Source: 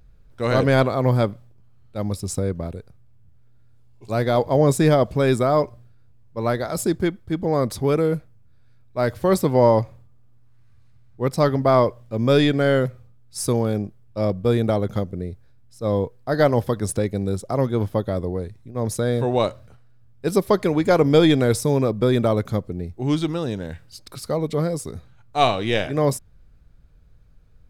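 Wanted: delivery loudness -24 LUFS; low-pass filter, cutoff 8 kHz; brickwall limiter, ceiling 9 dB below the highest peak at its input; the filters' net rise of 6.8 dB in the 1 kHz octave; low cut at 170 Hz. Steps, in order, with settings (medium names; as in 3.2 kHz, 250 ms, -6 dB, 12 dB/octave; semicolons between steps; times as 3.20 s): high-pass 170 Hz; low-pass 8 kHz; peaking EQ 1 kHz +9 dB; trim -1.5 dB; peak limiter -10 dBFS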